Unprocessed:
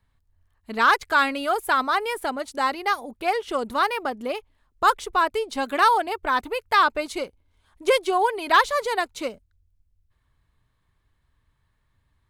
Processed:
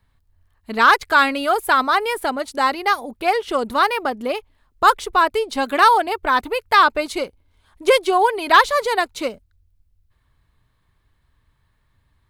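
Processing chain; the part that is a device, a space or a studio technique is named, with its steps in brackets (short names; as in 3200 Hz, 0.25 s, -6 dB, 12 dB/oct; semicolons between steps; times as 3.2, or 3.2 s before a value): exciter from parts (in parallel at -14 dB: HPF 4100 Hz 24 dB/oct + soft clip -32 dBFS, distortion -11 dB + HPF 3900 Hz 24 dB/oct); on the sum: gain +5 dB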